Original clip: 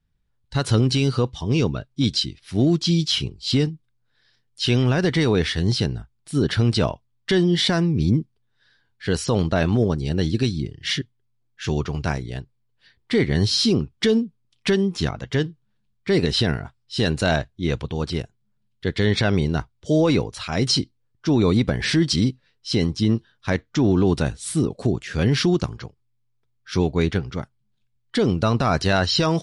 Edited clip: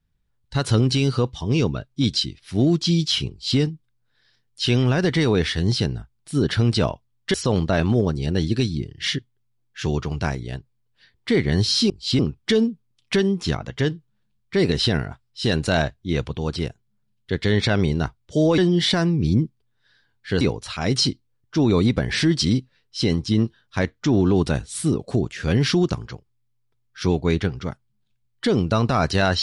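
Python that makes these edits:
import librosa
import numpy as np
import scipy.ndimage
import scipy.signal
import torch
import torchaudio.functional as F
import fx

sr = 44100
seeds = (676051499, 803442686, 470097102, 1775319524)

y = fx.edit(x, sr, fx.duplicate(start_s=3.3, length_s=0.29, to_s=13.73),
    fx.move(start_s=7.34, length_s=1.83, to_s=20.12), tone=tone)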